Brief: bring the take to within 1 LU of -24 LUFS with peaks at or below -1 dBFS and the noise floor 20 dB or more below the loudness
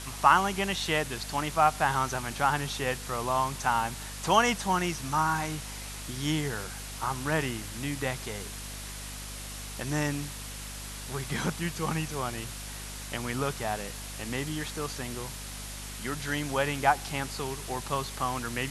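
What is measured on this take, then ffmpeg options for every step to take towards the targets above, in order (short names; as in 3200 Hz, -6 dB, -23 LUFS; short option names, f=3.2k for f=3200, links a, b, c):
hum 50 Hz; harmonics up to 250 Hz; hum level -41 dBFS; noise floor -40 dBFS; noise floor target -51 dBFS; loudness -30.5 LUFS; peak -6.0 dBFS; loudness target -24.0 LUFS
-> -af "bandreject=f=50:t=h:w=4,bandreject=f=100:t=h:w=4,bandreject=f=150:t=h:w=4,bandreject=f=200:t=h:w=4,bandreject=f=250:t=h:w=4"
-af "afftdn=nr=11:nf=-40"
-af "volume=6.5dB,alimiter=limit=-1dB:level=0:latency=1"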